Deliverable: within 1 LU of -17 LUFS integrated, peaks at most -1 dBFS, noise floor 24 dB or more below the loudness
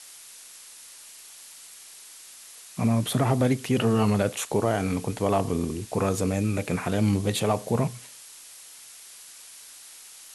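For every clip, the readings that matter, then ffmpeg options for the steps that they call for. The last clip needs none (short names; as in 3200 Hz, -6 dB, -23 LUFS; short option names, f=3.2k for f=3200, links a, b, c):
noise floor -47 dBFS; noise floor target -50 dBFS; loudness -25.5 LUFS; peak -10.0 dBFS; loudness target -17.0 LUFS
-> -af "afftdn=nr=6:nf=-47"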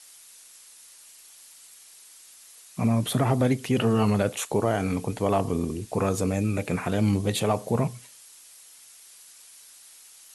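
noise floor -51 dBFS; loudness -25.5 LUFS; peak -10.0 dBFS; loudness target -17.0 LUFS
-> -af "volume=8.5dB"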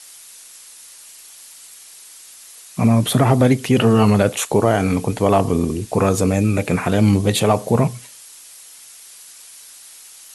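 loudness -17.0 LUFS; peak -1.5 dBFS; noise floor -42 dBFS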